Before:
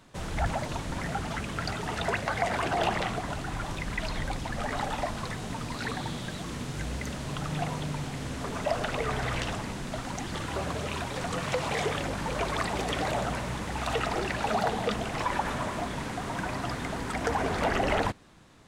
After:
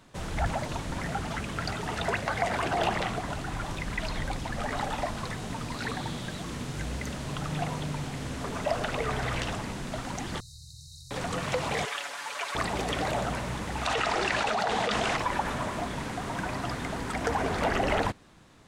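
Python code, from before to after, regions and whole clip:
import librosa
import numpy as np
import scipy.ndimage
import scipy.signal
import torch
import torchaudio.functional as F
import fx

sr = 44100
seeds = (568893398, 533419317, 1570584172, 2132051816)

y = fx.chain(x, sr, fx.brickwall_bandstop(low_hz=150.0, high_hz=3700.0),
    fx.bass_treble(bass_db=-12, treble_db=-7),
    fx.env_flatten(amount_pct=50), at=(10.4, 11.11))
y = fx.chain(y, sr, fx.highpass(hz=1100.0, slope=12),
    fx.comb(ms=7.0, depth=0.67), at=(11.85, 12.55))
y = fx.chain(y, sr, fx.lowpass(hz=7800.0, slope=12),
    fx.low_shelf(hz=390.0, db=-11.5),
    fx.env_flatten(amount_pct=100), at=(13.85, 15.17))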